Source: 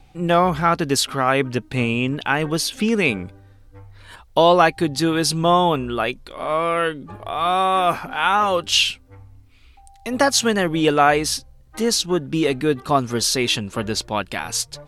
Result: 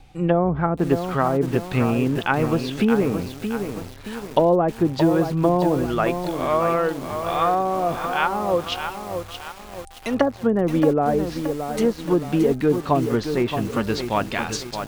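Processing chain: treble ducked by the level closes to 510 Hz, closed at -13.5 dBFS; lo-fi delay 0.623 s, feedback 55%, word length 6-bit, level -7 dB; gain +1 dB

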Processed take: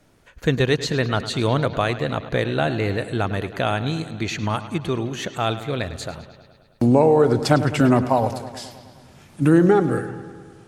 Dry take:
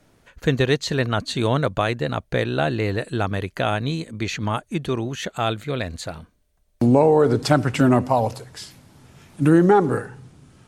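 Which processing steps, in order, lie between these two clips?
9.68–10.08 bell 940 Hz -15 dB 0.29 oct; on a send: analogue delay 0.105 s, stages 4096, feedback 68%, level -14 dB

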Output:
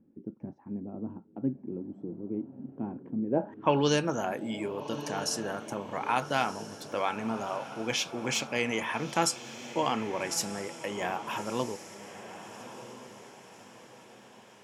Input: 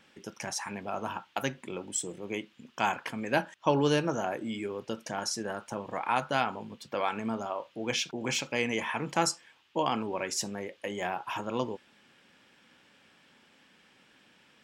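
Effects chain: low-pass sweep 280 Hz -> 13000 Hz, 3.26–4.07; diffused feedback echo 1.276 s, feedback 44%, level -12 dB

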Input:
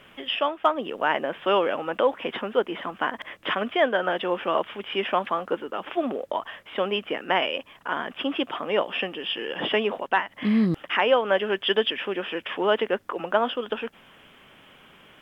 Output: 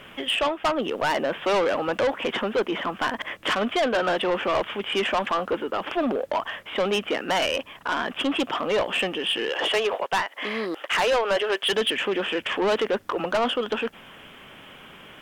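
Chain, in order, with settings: 9.49–11.73 HPF 400 Hz 24 dB/oct; soft clip -25 dBFS, distortion -7 dB; gain +6.5 dB

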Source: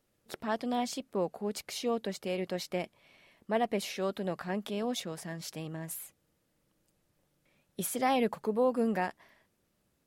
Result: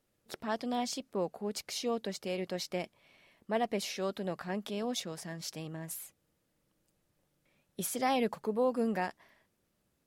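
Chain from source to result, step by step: dynamic EQ 5400 Hz, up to +5 dB, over -54 dBFS, Q 1.4; gain -2 dB

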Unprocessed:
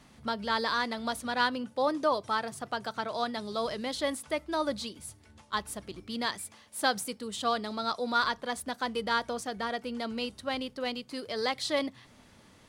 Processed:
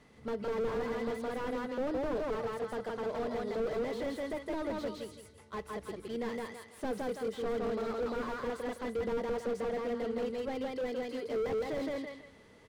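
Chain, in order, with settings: high shelf 3800 Hz -6 dB; small resonant body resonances 450/2000 Hz, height 13 dB, ringing for 45 ms; on a send: feedback echo 0.164 s, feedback 26%, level -3 dB; on the sum: slew limiter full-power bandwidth 23 Hz; gain -4.5 dB

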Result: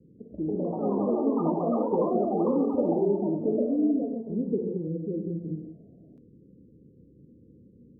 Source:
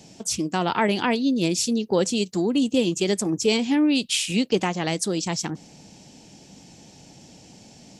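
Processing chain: Chebyshev low-pass 520 Hz, order 8; non-linear reverb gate 0.23 s flat, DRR 2 dB; 2.34–3.05 crackle 76/s -51 dBFS; echoes that change speed 0.187 s, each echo +5 st, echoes 3; gain -6 dB

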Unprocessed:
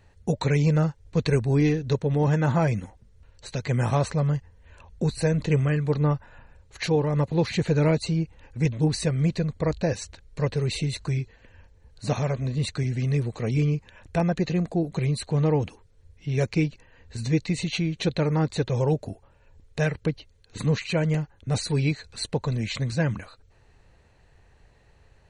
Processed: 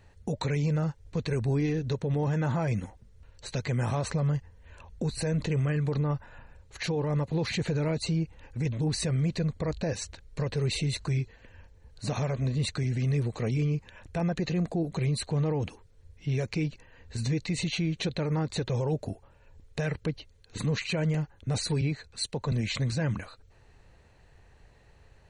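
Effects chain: limiter -21.5 dBFS, peak gain reduction 10 dB; 21.81–22.52 three-band expander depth 70%

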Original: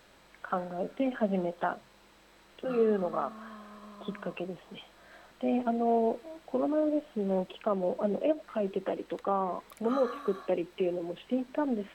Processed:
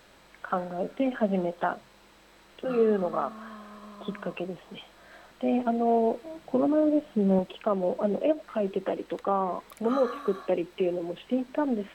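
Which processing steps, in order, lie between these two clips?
6.24–7.39 bell 150 Hz +8 dB 1.5 oct; gain +3 dB

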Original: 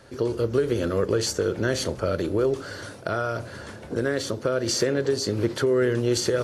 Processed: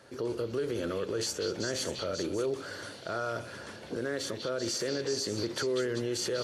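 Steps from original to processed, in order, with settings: HPF 190 Hz 6 dB/oct; limiter -19.5 dBFS, peak gain reduction 8 dB; on a send: delay with a stepping band-pass 0.195 s, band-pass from 3200 Hz, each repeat 0.7 oct, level -1.5 dB; on the sum: gain -4 dB

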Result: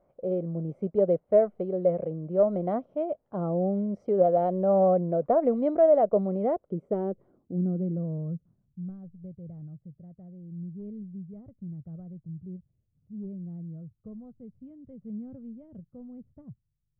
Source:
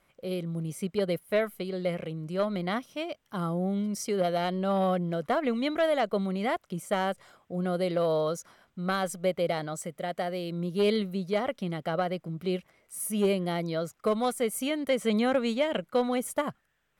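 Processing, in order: low-pass sweep 610 Hz -> 110 Hz, 6.32–9

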